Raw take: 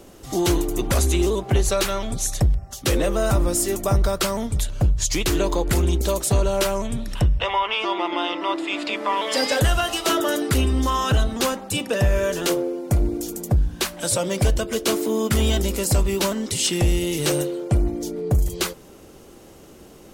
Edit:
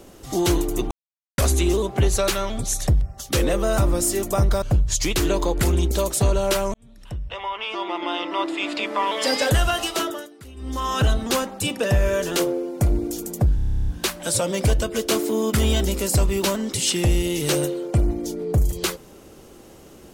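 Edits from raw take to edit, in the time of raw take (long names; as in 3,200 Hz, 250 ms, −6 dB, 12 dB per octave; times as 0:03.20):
0:00.91: splice in silence 0.47 s
0:04.15–0:04.72: remove
0:06.84–0:08.56: fade in
0:09.93–0:11.11: duck −22.5 dB, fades 0.46 s
0:13.65: stutter 0.03 s, 12 plays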